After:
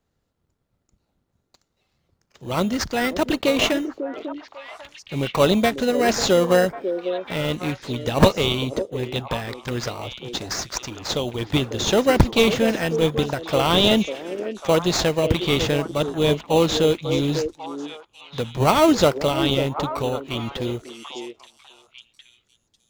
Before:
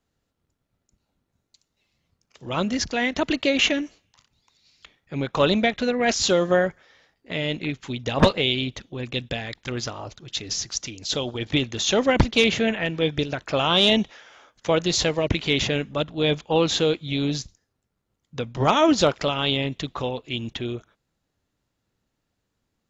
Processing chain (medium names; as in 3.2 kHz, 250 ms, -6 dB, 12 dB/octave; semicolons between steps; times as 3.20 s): peaking EQ 270 Hz -2.5 dB 0.36 oct; in parallel at -4 dB: sample-rate reducer 3.4 kHz, jitter 0%; on the sum: repeats whose band climbs or falls 546 ms, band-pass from 390 Hz, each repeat 1.4 oct, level -6 dB; trim -1 dB